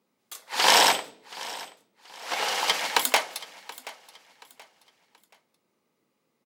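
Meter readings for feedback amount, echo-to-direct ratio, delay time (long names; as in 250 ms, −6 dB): 33%, −18.0 dB, 728 ms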